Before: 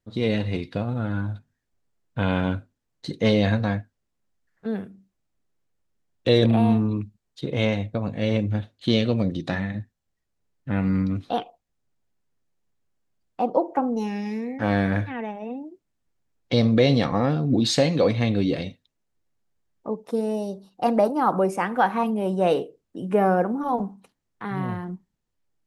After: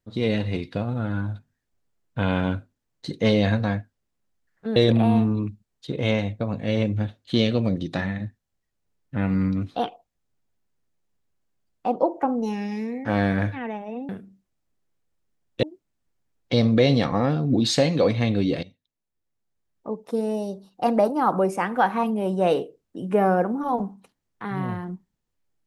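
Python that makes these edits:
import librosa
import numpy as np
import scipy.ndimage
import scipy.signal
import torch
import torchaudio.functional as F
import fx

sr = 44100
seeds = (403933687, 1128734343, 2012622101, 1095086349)

y = fx.edit(x, sr, fx.move(start_s=4.76, length_s=1.54, to_s=15.63),
    fx.fade_in_from(start_s=18.63, length_s=1.59, floor_db=-16.0), tone=tone)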